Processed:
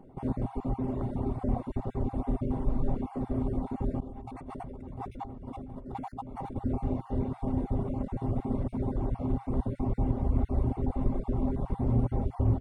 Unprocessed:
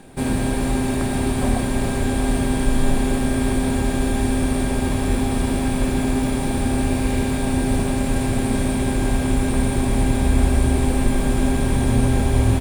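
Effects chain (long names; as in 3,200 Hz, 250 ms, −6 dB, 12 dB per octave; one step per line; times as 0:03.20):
time-frequency cells dropped at random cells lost 21%
reverb reduction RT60 1.4 s
dynamic equaliser 120 Hz, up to +4 dB, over −40 dBFS, Q 4.7
0:04.00–0:06.56: compressor whose output falls as the input rises −32 dBFS, ratio −1
Savitzky-Golay smoothing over 65 samples
highs frequency-modulated by the lows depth 0.11 ms
level −7.5 dB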